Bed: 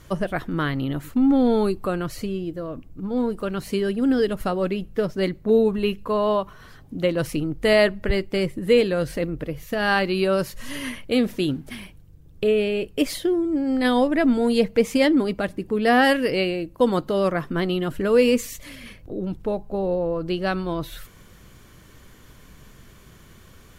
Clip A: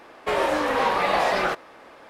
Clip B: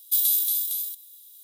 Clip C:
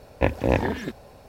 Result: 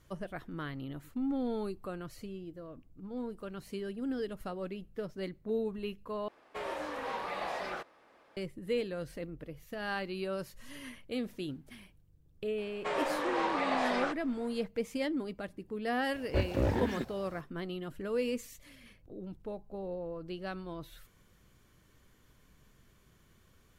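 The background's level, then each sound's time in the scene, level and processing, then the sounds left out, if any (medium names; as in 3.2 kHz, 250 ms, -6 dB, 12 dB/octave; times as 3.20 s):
bed -15.5 dB
6.28 s: replace with A -15.5 dB
12.58 s: add A -10 dB + elliptic band-pass 140–8500 Hz
16.13 s: add C -4.5 dB + slew-rate limiter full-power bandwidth 43 Hz
not used: B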